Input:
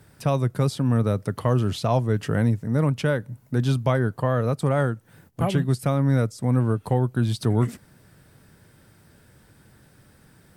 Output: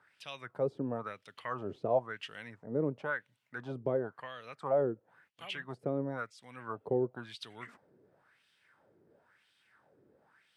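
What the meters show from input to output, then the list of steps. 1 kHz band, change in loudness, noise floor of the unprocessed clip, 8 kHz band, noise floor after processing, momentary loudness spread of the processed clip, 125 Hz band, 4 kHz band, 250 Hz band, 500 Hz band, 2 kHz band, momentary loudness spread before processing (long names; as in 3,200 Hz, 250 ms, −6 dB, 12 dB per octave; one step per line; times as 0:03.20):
−10.5 dB, −13.5 dB, −56 dBFS, below −20 dB, −74 dBFS, 15 LU, −24.0 dB, −10.0 dB, −15.5 dB, −8.0 dB, −7.0 dB, 4 LU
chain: LFO wah 0.97 Hz 380–3,300 Hz, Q 3.3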